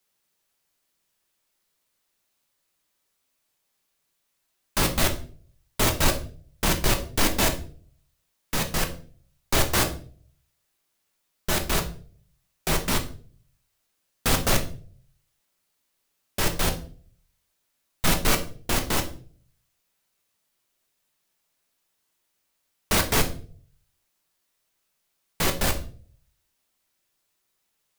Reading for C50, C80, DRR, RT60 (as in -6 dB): 12.0 dB, 16.5 dB, 4.0 dB, 0.45 s